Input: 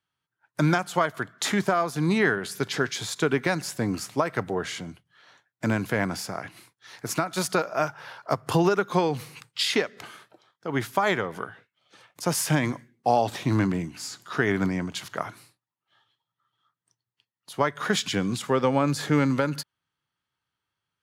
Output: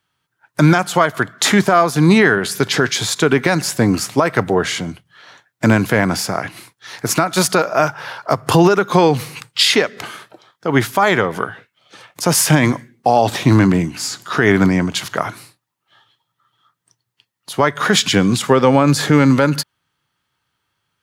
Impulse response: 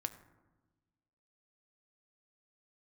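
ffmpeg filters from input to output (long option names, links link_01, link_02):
-af "alimiter=level_in=13.5dB:limit=-1dB:release=50:level=0:latency=1,volume=-1dB"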